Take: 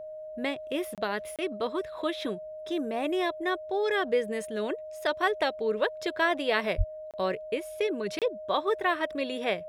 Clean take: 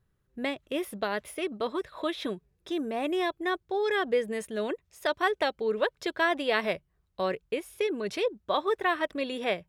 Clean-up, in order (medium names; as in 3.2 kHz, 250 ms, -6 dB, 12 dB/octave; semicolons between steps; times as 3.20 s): band-stop 620 Hz, Q 30; de-plosive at 6.77 s; interpolate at 0.95/1.36/7.11/8.19 s, 27 ms